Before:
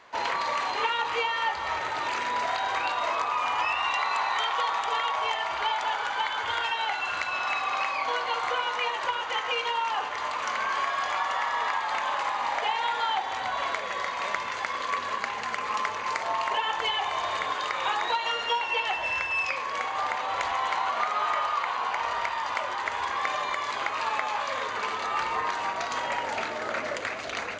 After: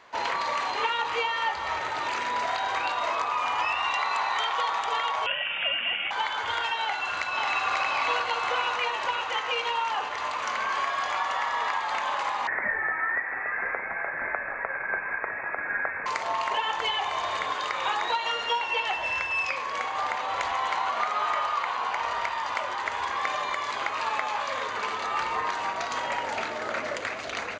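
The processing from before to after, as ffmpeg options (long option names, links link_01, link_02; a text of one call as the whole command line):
ffmpeg -i in.wav -filter_complex "[0:a]asettb=1/sr,asplit=3[link_01][link_02][link_03];[link_01]atrim=end=5.264[link_04];[link_02]atrim=start=5.26:end=6.11,asetpts=PTS-STARTPTS,afade=type=in:duration=0.004:curve=qsin,afade=type=out:start_time=0.846:duration=0.004:curve=qsin,lowpass=frequency=3100:width_type=q:width=0.5098,lowpass=frequency=3100:width_type=q:width=0.6013,lowpass=frequency=3100:width_type=q:width=0.9,lowpass=frequency=3100:width_type=q:width=2.563,afreqshift=-3700[link_05];[link_03]atrim=start=6.106[link_06];[link_04][link_05]acrossfade=duration=0.004:curve1=hsin:curve2=qsin[link_07];[link_07][link_06]acrossfade=duration=0.004:curve1=qsin:curve2=hsin,asplit=2[link_08][link_09];[link_09]afade=type=in:start_time=6.83:duration=0.01,afade=type=out:start_time=7.67:duration=0.01,aecho=0:1:540|1080|1620|2160|2700|3240|3780|4320|4860|5400|5940:0.841395|0.546907|0.355489|0.231068|0.150194|0.0976263|0.0634571|0.0412471|0.0268106|0.0174269|0.0113275[link_10];[link_08][link_10]amix=inputs=2:normalize=0,asettb=1/sr,asplit=3[link_11][link_12][link_13];[link_11]atrim=end=12.474[link_14];[link_12]atrim=start=12.47:end=16.06,asetpts=PTS-STARTPTS,afade=type=in:duration=0.004:curve=qsin,afade=type=out:start_time=3.586:duration=0.004:curve=qsin,lowpass=frequency=2300:width_type=q:width=0.5098,lowpass=frequency=2300:width_type=q:width=0.6013,lowpass=frequency=2300:width_type=q:width=0.9,lowpass=frequency=2300:width_type=q:width=2.563,afreqshift=-2700[link_15];[link_13]atrim=start=16.056[link_16];[link_14][link_15]acrossfade=duration=0.004:curve1=hsin:curve2=qsin[link_17];[link_17][link_16]acrossfade=duration=0.004:curve1=qsin:curve2=hsin" out.wav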